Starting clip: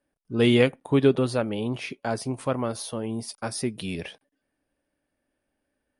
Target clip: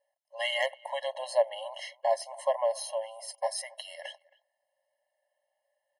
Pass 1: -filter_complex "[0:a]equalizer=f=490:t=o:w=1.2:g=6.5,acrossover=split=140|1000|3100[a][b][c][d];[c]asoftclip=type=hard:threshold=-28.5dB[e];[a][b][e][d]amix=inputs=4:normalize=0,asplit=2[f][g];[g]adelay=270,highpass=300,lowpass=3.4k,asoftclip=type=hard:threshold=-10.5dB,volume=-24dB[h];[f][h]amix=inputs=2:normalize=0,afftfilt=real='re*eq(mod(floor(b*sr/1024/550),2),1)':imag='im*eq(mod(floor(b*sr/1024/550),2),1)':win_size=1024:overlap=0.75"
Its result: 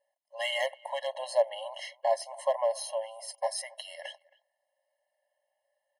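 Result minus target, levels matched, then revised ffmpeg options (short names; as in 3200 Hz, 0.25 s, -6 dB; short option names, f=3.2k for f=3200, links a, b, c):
hard clip: distortion +10 dB
-filter_complex "[0:a]equalizer=f=490:t=o:w=1.2:g=6.5,acrossover=split=140|1000|3100[a][b][c][d];[c]asoftclip=type=hard:threshold=-19.5dB[e];[a][b][e][d]amix=inputs=4:normalize=0,asplit=2[f][g];[g]adelay=270,highpass=300,lowpass=3.4k,asoftclip=type=hard:threshold=-10.5dB,volume=-24dB[h];[f][h]amix=inputs=2:normalize=0,afftfilt=real='re*eq(mod(floor(b*sr/1024/550),2),1)':imag='im*eq(mod(floor(b*sr/1024/550),2),1)':win_size=1024:overlap=0.75"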